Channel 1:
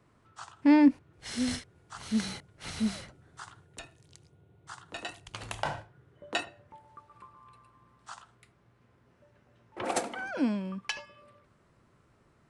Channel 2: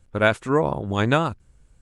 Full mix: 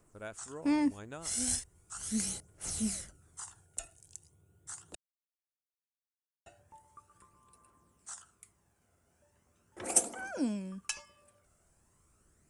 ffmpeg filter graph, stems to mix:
-filter_complex "[0:a]highshelf=f=4700:g=8.5,bandreject=f=60:t=h:w=6,bandreject=f=120:t=h:w=6,aphaser=in_gain=1:out_gain=1:delay=1.5:decay=0.42:speed=0.39:type=triangular,volume=1,asplit=3[s0][s1][s2];[s0]atrim=end=4.95,asetpts=PTS-STARTPTS,afade=t=out:st=4.946:d=0.004:c=hsin[s3];[s1]atrim=start=4.95:end=6.46,asetpts=PTS-STARTPTS,volume=0[s4];[s2]atrim=start=6.46,asetpts=PTS-STARTPTS,afade=t=in:d=0.004:c=hsin[s5];[s3][s4][s5]concat=n=3:v=0:a=1[s6];[1:a]volume=0.126[s7];[s6][s7]amix=inputs=2:normalize=0,equalizer=f=125:t=o:w=1:g=-10,equalizer=f=250:t=o:w=1:g=-6,equalizer=f=500:t=o:w=1:g=-4,equalizer=f=1000:t=o:w=1:g=-7,equalizer=f=2000:t=o:w=1:g=-7,equalizer=f=4000:t=o:w=1:g=-12,equalizer=f=8000:t=o:w=1:g=8"

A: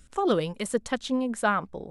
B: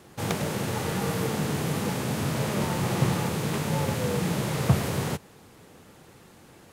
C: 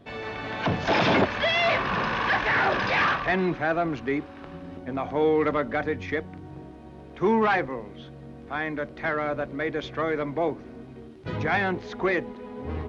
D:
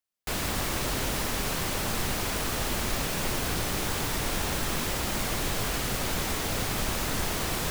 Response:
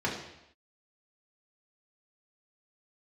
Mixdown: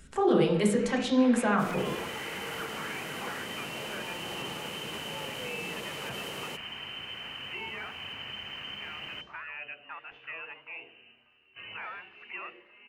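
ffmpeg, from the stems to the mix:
-filter_complex "[0:a]alimiter=limit=0.075:level=0:latency=1:release=37,volume=0.841,asplit=3[s0][s1][s2];[s1]volume=0.668[s3];[1:a]highpass=290,adelay=1400,volume=0.335[s4];[2:a]equalizer=f=160:w=0.51:g=-14.5,acrossover=split=1500[s5][s6];[s5]aeval=exprs='val(0)*(1-0.7/2+0.7/2*cos(2*PI*1.5*n/s))':c=same[s7];[s6]aeval=exprs='val(0)*(1-0.7/2-0.7/2*cos(2*PI*1.5*n/s))':c=same[s8];[s7][s8]amix=inputs=2:normalize=0,adelay=300,volume=0.501,asplit=2[s9][s10];[s10]volume=0.0708[s11];[3:a]adelay=1500,volume=0.376,asplit=2[s12][s13];[s13]volume=0.0631[s14];[s2]apad=whole_len=581480[s15];[s9][s15]sidechaincompress=threshold=0.01:ratio=8:attack=16:release=148[s16];[s0][s4]amix=inputs=2:normalize=0,alimiter=level_in=2:limit=0.0631:level=0:latency=1:release=28,volume=0.501,volume=1[s17];[s16][s12]amix=inputs=2:normalize=0,lowpass=f=2600:t=q:w=0.5098,lowpass=f=2600:t=q:w=0.6013,lowpass=f=2600:t=q:w=0.9,lowpass=f=2600:t=q:w=2.563,afreqshift=-3100,acompressor=threshold=0.0141:ratio=6,volume=1[s18];[4:a]atrim=start_sample=2205[s19];[s3][s11][s14]amix=inputs=3:normalize=0[s20];[s20][s19]afir=irnorm=-1:irlink=0[s21];[s17][s18][s21]amix=inputs=3:normalize=0"

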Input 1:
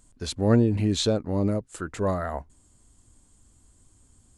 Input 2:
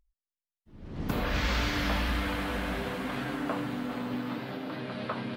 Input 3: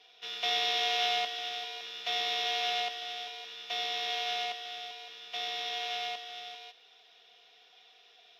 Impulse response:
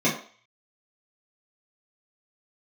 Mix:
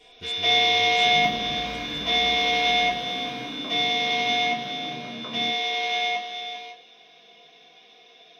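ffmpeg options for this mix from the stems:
-filter_complex "[0:a]volume=0.282[s0];[1:a]adelay=150,volume=0.531,asplit=2[s1][s2];[s2]volume=0.112[s3];[2:a]lowshelf=f=290:g=7.5,volume=0.562,asplit=2[s4][s5];[s5]volume=0.708[s6];[s0][s1]amix=inputs=2:normalize=0,acompressor=threshold=0.00891:ratio=6,volume=1[s7];[3:a]atrim=start_sample=2205[s8];[s3][s6]amix=inputs=2:normalize=0[s9];[s9][s8]afir=irnorm=-1:irlink=0[s10];[s4][s7][s10]amix=inputs=3:normalize=0"

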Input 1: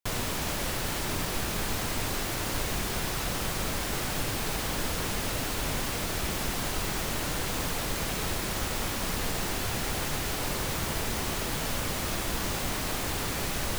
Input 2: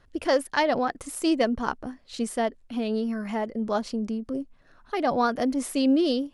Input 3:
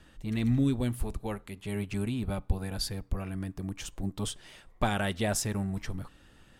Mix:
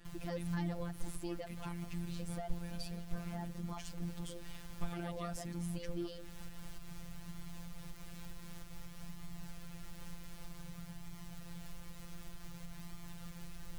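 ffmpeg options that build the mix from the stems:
-filter_complex "[0:a]lowshelf=f=200:t=q:w=1.5:g=13,volume=0.168[s0];[1:a]volume=0.531[s1];[2:a]acrossover=split=160[s2][s3];[s3]acompressor=threshold=0.00447:ratio=3[s4];[s2][s4]amix=inputs=2:normalize=0,volume=0.891[s5];[s0][s1]amix=inputs=2:normalize=0,flanger=delay=0.9:depth=2.9:regen=-54:speed=0.54:shape=sinusoidal,alimiter=level_in=2.66:limit=0.0631:level=0:latency=1:release=164,volume=0.376,volume=1[s6];[s5][s6]amix=inputs=2:normalize=0,afftfilt=real='hypot(re,im)*cos(PI*b)':imag='0':win_size=1024:overlap=0.75"

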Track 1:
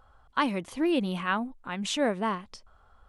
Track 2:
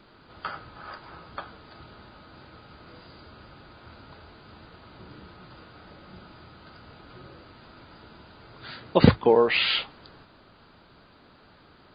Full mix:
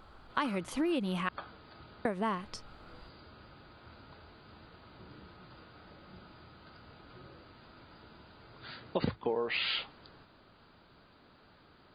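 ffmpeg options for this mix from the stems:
-filter_complex "[0:a]volume=1.26,asplit=3[s0][s1][s2];[s0]atrim=end=1.29,asetpts=PTS-STARTPTS,afade=t=out:st=1.286:d=0.004:c=hsin[s3];[s1]atrim=start=1.29:end=2.05,asetpts=PTS-STARTPTS,volume=0[s4];[s2]atrim=start=2.05,asetpts=PTS-STARTPTS,afade=t=in:d=0.004:c=hsin[s5];[s3][s4][s5]concat=n=3:v=0:a=1[s6];[1:a]volume=0.501[s7];[s6][s7]amix=inputs=2:normalize=0,acompressor=threshold=0.0355:ratio=5"

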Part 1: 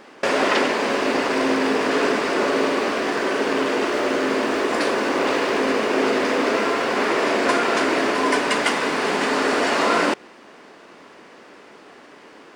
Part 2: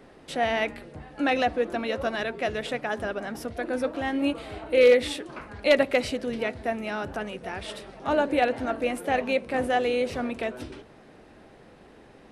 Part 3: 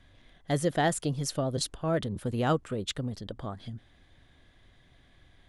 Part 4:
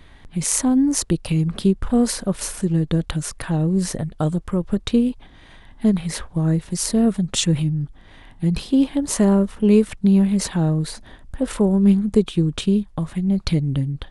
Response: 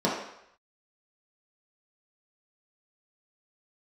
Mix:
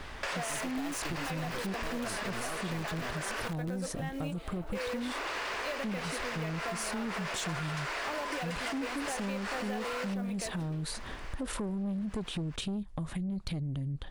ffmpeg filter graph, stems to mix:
-filter_complex "[0:a]highpass=890,acrusher=bits=7:mode=log:mix=0:aa=0.000001,volume=1.06,asplit=3[s0][s1][s2];[s0]atrim=end=3.48,asetpts=PTS-STARTPTS,afade=t=out:st=3.476:d=0.004:c=hsin[s3];[s1]atrim=start=3.48:end=4.75,asetpts=PTS-STARTPTS,volume=0[s4];[s2]atrim=start=4.75,asetpts=PTS-STARTPTS,afade=t=in:d=0.004:c=hsin[s5];[s3][s4][s5]concat=n=3:v=0:a=1[s6];[1:a]bass=f=250:g=-8,treble=f=4000:g=0,volume=0.668[s7];[2:a]acrusher=bits=3:dc=4:mix=0:aa=0.000001,volume=1.26[s8];[3:a]volume=1.06[s9];[s6][s9]amix=inputs=2:normalize=0,asoftclip=type=tanh:threshold=0.178,alimiter=limit=0.075:level=0:latency=1:release=55,volume=1[s10];[s7][s8]amix=inputs=2:normalize=0,acrusher=bits=5:mode=log:mix=0:aa=0.000001,alimiter=limit=0.0891:level=0:latency=1,volume=1[s11];[s10][s11]amix=inputs=2:normalize=0,acompressor=threshold=0.0224:ratio=6"

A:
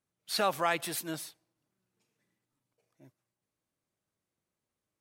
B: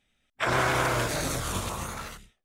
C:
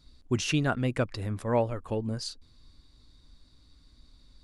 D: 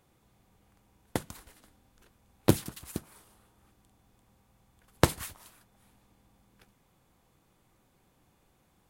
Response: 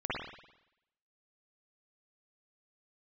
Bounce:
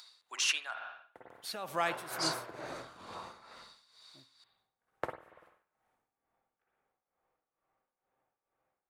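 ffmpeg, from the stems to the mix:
-filter_complex "[0:a]adelay=1150,volume=0.708,asplit=2[s0][s1];[s1]volume=0.0794[s2];[1:a]asoftclip=type=tanh:threshold=0.0841,bandpass=f=890:t=q:w=0.67:csg=0,adelay=1450,volume=0.335,asplit=2[s3][s4];[s4]volume=0.282[s5];[2:a]highpass=f=850:w=0.5412,highpass=f=850:w=1.3066,acompressor=mode=upward:threshold=0.00251:ratio=2.5,asoftclip=type=tanh:threshold=0.0944,volume=1.26,asplit=3[s6][s7][s8];[s6]atrim=end=0.79,asetpts=PTS-STARTPTS,afade=t=out:st=0.786:d=0.004:c=hsin[s9];[s7]atrim=start=0.79:end=1.91,asetpts=PTS-STARTPTS,volume=0[s10];[s8]atrim=start=1.91,asetpts=PTS-STARTPTS,afade=t=in:d=0.004:c=hsin[s11];[s9][s10][s11]concat=n=3:v=0:a=1,asplit=2[s12][s13];[s13]volume=0.224[s14];[3:a]acrossover=split=440 2100:gain=0.1 1 0.0708[s15][s16][s17];[s15][s16][s17]amix=inputs=3:normalize=0,bandreject=f=1000:w=12,volume=0.266,asplit=2[s18][s19];[s19]volume=0.562[s20];[4:a]atrim=start_sample=2205[s21];[s2][s5][s14][s20]amix=inputs=4:normalize=0[s22];[s22][s21]afir=irnorm=-1:irlink=0[s23];[s0][s3][s12][s18][s23]amix=inputs=5:normalize=0,tremolo=f=2.2:d=0.75"

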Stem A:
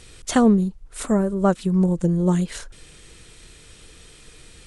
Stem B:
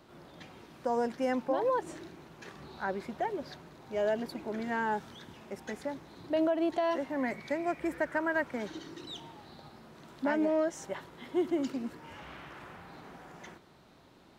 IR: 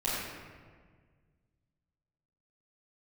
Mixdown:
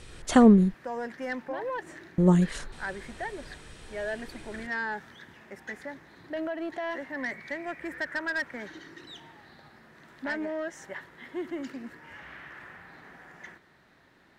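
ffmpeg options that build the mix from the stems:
-filter_complex "[0:a]highshelf=f=4300:g=-8,volume=0.944,asplit=3[s0][s1][s2];[s0]atrim=end=0.74,asetpts=PTS-STARTPTS,afade=t=out:st=0.736:d=0.004:c=hsin[s3];[s1]atrim=start=0.74:end=2.18,asetpts=PTS-STARTPTS,volume=0[s4];[s2]atrim=start=2.18,asetpts=PTS-STARTPTS,afade=t=in:d=0.004:c=hsin[s5];[s3][s4][s5]concat=n=3:v=0:a=1[s6];[1:a]equalizer=f=1800:w=2.5:g=14,asoftclip=type=tanh:threshold=0.0891,volume=0.631[s7];[s6][s7]amix=inputs=2:normalize=0"

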